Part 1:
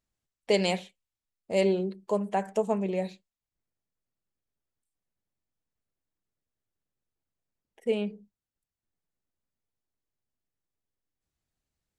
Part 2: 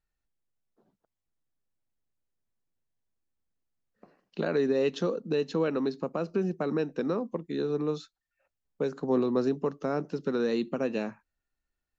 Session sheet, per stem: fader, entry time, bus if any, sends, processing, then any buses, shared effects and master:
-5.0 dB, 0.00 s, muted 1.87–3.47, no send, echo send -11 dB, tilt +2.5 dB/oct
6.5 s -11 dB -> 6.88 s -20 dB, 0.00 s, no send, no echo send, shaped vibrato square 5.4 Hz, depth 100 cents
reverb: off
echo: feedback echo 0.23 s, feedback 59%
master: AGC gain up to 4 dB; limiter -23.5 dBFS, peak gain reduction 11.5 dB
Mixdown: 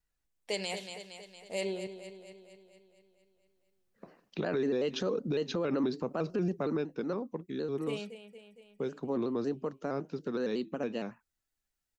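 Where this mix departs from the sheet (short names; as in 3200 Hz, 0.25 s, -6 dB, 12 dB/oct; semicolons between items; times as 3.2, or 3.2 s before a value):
stem 1 -5.0 dB -> -11.0 dB; stem 2 -11.0 dB -> 0.0 dB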